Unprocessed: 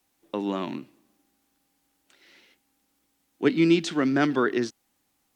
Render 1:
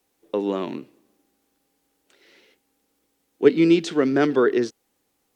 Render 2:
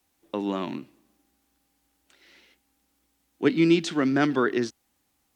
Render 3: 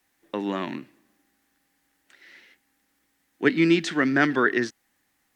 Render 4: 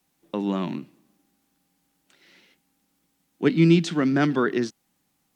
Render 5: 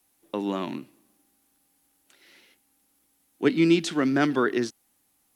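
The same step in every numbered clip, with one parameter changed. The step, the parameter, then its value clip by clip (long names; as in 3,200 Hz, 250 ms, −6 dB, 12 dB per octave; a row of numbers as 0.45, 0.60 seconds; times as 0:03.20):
parametric band, centre frequency: 450, 66, 1,800, 170, 11,000 Hertz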